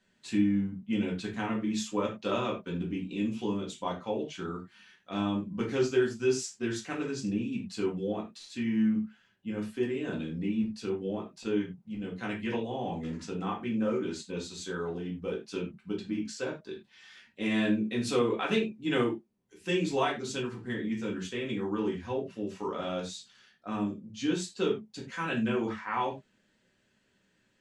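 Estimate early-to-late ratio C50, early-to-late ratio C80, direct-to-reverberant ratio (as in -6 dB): 9.0 dB, 15.5 dB, -3.0 dB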